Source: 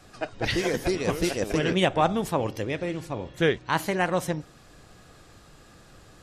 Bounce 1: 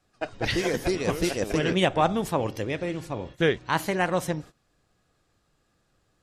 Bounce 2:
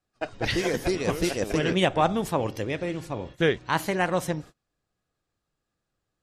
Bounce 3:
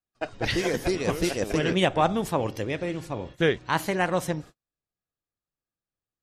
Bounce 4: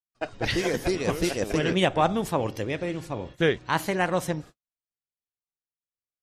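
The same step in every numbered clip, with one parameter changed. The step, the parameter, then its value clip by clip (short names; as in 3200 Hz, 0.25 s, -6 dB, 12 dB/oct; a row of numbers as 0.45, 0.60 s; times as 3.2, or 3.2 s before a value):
gate, range: -18, -30, -44, -59 dB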